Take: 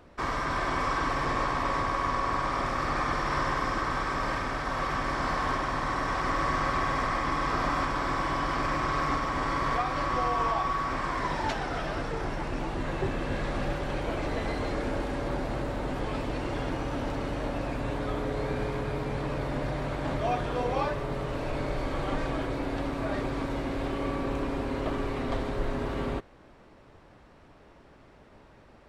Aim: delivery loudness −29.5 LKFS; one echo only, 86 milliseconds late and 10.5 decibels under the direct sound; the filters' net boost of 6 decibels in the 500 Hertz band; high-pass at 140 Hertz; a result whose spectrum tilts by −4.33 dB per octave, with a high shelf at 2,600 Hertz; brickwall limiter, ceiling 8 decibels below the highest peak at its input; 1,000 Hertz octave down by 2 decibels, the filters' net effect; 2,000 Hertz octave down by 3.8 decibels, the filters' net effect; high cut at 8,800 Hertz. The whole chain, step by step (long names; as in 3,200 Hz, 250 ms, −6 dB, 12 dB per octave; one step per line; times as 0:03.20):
high-pass filter 140 Hz
low-pass filter 8,800 Hz
parametric band 500 Hz +8.5 dB
parametric band 1,000 Hz −4 dB
parametric band 2,000 Hz −6 dB
high-shelf EQ 2,600 Hz +5 dB
brickwall limiter −20.5 dBFS
single-tap delay 86 ms −10.5 dB
level +0.5 dB